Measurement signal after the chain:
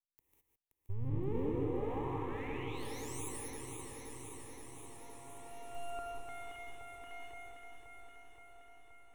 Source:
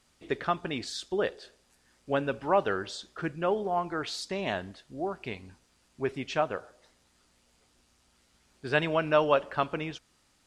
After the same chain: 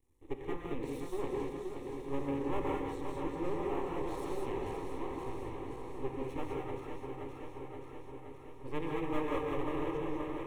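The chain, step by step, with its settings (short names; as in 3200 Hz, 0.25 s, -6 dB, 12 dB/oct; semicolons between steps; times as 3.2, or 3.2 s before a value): regenerating reverse delay 0.262 s, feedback 83%, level -6 dB; EQ curve 120 Hz 0 dB, 240 Hz +3 dB, 450 Hz -9 dB, 710 Hz -7 dB, 1300 Hz -18 dB, 2000 Hz -16 dB, 3100 Hz -25 dB, 4600 Hz -9 dB, 6900 Hz -16 dB, 12000 Hz -9 dB; half-wave rectifier; fixed phaser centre 980 Hz, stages 8; diffused feedback echo 1.03 s, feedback 48%, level -14.5 dB; non-linear reverb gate 0.23 s rising, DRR -0.5 dB; gain +3.5 dB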